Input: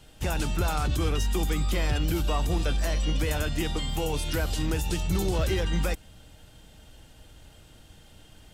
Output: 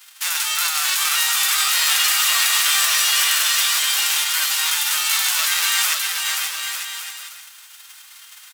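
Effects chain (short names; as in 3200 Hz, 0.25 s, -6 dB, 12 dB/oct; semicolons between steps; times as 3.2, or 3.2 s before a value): spectral whitening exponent 0.3; HPF 1100 Hz 24 dB/oct; bouncing-ball echo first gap 0.53 s, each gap 0.7×, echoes 5; 1.68–4.24 lo-fi delay 0.182 s, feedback 55%, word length 8-bit, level -7 dB; gain +5.5 dB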